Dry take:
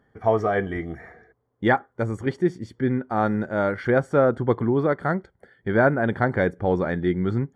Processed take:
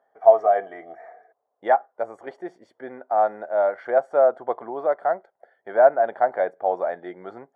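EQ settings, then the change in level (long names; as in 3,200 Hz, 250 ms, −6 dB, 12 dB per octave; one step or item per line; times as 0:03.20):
high-pass with resonance 670 Hz, resonance Q 5.4
high-shelf EQ 2,000 Hz −12 dB
−4.0 dB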